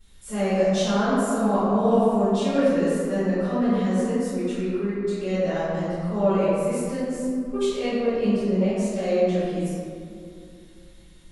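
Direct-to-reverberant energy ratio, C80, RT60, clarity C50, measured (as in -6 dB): -18.5 dB, -2.0 dB, 2.4 s, -5.0 dB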